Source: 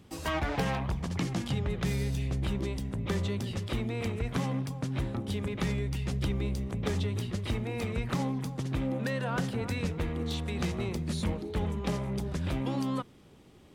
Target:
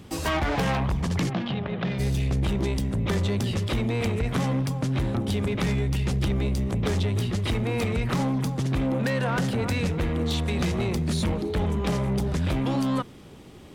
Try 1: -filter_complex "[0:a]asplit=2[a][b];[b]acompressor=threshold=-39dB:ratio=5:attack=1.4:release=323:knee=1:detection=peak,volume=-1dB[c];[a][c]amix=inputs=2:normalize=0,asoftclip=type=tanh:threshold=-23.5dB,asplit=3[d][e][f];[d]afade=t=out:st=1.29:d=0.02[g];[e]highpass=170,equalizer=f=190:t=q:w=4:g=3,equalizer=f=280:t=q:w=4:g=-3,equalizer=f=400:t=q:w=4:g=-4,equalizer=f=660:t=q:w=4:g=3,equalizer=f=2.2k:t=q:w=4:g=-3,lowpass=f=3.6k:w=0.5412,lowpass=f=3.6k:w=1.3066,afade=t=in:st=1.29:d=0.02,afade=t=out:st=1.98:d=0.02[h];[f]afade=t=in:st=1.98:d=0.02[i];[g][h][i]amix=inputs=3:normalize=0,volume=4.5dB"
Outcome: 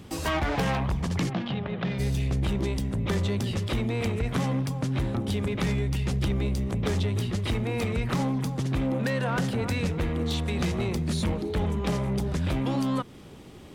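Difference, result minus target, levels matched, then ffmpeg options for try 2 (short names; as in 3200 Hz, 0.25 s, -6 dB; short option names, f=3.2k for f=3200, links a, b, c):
compressor: peak gain reduction +9 dB
-filter_complex "[0:a]asplit=2[a][b];[b]acompressor=threshold=-27.5dB:ratio=5:attack=1.4:release=323:knee=1:detection=peak,volume=-1dB[c];[a][c]amix=inputs=2:normalize=0,asoftclip=type=tanh:threshold=-23.5dB,asplit=3[d][e][f];[d]afade=t=out:st=1.29:d=0.02[g];[e]highpass=170,equalizer=f=190:t=q:w=4:g=3,equalizer=f=280:t=q:w=4:g=-3,equalizer=f=400:t=q:w=4:g=-4,equalizer=f=660:t=q:w=4:g=3,equalizer=f=2.2k:t=q:w=4:g=-3,lowpass=f=3.6k:w=0.5412,lowpass=f=3.6k:w=1.3066,afade=t=in:st=1.29:d=0.02,afade=t=out:st=1.98:d=0.02[h];[f]afade=t=in:st=1.98:d=0.02[i];[g][h][i]amix=inputs=3:normalize=0,volume=4.5dB"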